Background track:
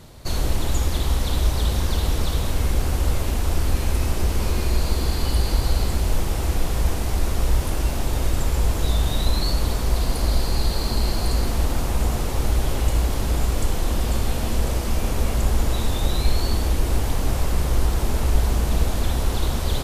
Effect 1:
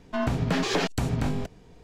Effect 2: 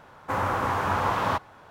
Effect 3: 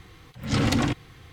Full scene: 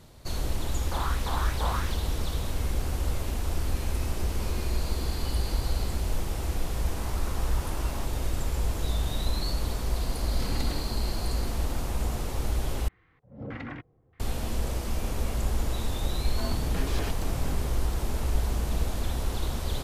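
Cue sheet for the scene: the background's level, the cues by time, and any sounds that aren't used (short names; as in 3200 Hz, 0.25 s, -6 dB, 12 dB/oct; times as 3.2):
background track -7.5 dB
0.57 add 2 -11 dB + LFO high-pass saw up 2.9 Hz 410–3700 Hz
6.68 add 2 -13.5 dB + limiter -22.5 dBFS
9.88 add 3 -14 dB
12.88 replace with 3 -16 dB + LFO low-pass square 1.6 Hz 590–1900 Hz
16.24 add 1 -10.5 dB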